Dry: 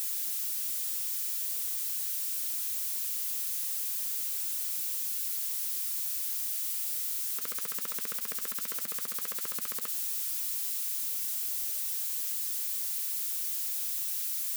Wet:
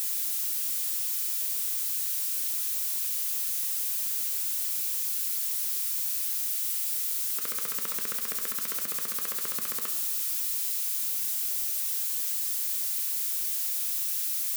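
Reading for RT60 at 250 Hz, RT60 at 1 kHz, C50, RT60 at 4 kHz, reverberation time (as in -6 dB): 1.3 s, 1.2 s, 9.5 dB, 0.75 s, 1.2 s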